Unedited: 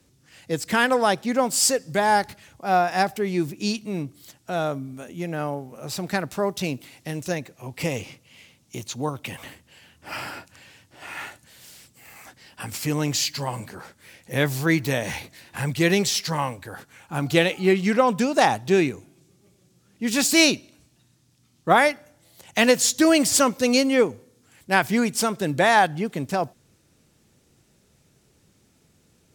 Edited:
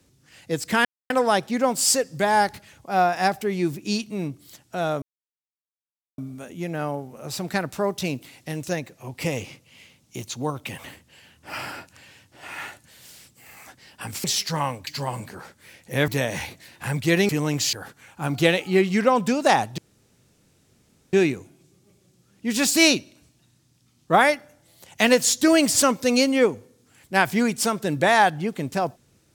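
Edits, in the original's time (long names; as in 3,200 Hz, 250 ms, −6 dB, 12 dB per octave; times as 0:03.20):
0:00.85: splice in silence 0.25 s
0:04.77: splice in silence 1.16 s
0:12.83–0:13.27: swap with 0:16.02–0:16.65
0:14.48–0:14.81: remove
0:18.70: splice in room tone 1.35 s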